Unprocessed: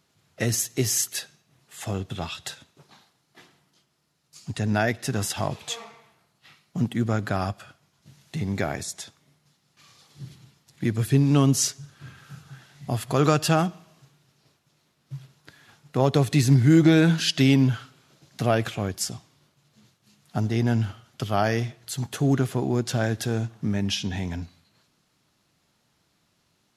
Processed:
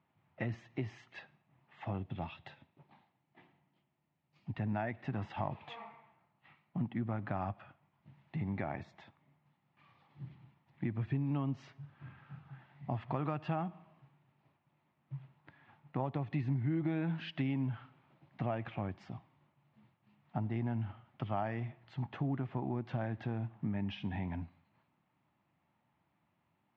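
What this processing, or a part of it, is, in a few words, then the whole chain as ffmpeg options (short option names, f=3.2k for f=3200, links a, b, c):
bass amplifier: -filter_complex "[0:a]asettb=1/sr,asplit=3[a][b][c];[a]atrim=end=1.994[d];[b]atrim=start=1.99:end=4.56,asetpts=PTS-STARTPTS,afade=t=in:d=0.004:c=qsin,afade=t=out:st=2.566:d=0.004:c=qsin,equalizer=f=1.2k:w=1.2:g=-6[e];[c]atrim=start=4.556[f];[d][e]acrossfade=d=0.004:c1=hsin:c2=qsin[g];[g][f]acrossfade=d=0.004:c1=qsin:c2=hsin,acompressor=threshold=-25dB:ratio=4,highpass=74,equalizer=f=440:t=q:w=4:g=-9,equalizer=f=880:t=q:w=4:g=6,equalizer=f=1.5k:t=q:w=4:g=-6,lowpass=f=2.4k:w=0.5412,lowpass=f=2.4k:w=1.3066,volume=-6.5dB"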